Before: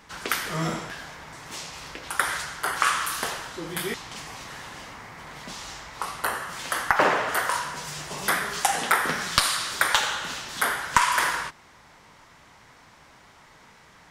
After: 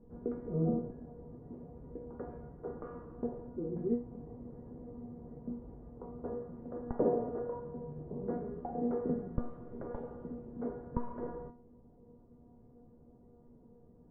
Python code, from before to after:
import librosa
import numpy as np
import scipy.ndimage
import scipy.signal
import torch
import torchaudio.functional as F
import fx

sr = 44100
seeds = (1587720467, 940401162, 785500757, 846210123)

y = fx.ladder_lowpass(x, sr, hz=530.0, resonance_pct=40)
y = fx.low_shelf(y, sr, hz=310.0, db=12.0)
y = fx.comb_fb(y, sr, f0_hz=240.0, decay_s=0.33, harmonics='all', damping=0.0, mix_pct=90)
y = F.gain(torch.from_numpy(y), 12.5).numpy()